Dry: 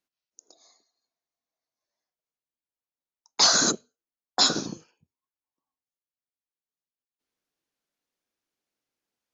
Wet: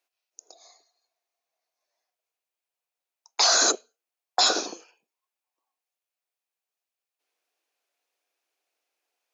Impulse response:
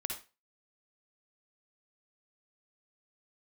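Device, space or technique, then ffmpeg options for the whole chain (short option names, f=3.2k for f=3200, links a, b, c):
laptop speaker: -af "highpass=f=380:w=0.5412,highpass=f=380:w=1.3066,equalizer=f=720:t=o:w=0.35:g=6,equalizer=f=2.5k:t=o:w=0.28:g=6,alimiter=limit=-15.5dB:level=0:latency=1:release=11,volume=4.5dB"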